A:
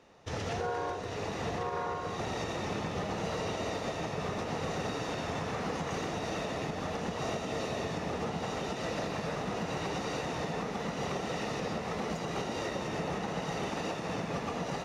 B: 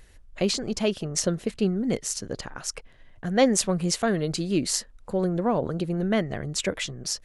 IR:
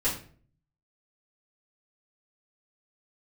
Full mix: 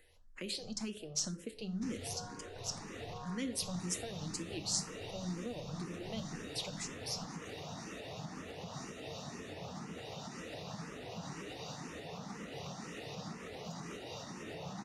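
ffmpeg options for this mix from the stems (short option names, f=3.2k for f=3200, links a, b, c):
-filter_complex "[0:a]flanger=delay=6.4:depth=1.3:regen=-75:speed=1.2:shape=triangular,adelay=1550,volume=2dB[a];[1:a]equalizer=f=150:t=o:w=0.98:g=-7,volume=-7.5dB,asplit=2[b][c];[c]volume=-14dB[d];[2:a]atrim=start_sample=2205[e];[d][e]afir=irnorm=-1:irlink=0[f];[a][b][f]amix=inputs=3:normalize=0,lowshelf=f=71:g=-11.5,acrossover=split=230|3000[g][h][i];[h]acompressor=threshold=-44dB:ratio=5[j];[g][j][i]amix=inputs=3:normalize=0,asplit=2[k][l];[l]afreqshift=2[m];[k][m]amix=inputs=2:normalize=1"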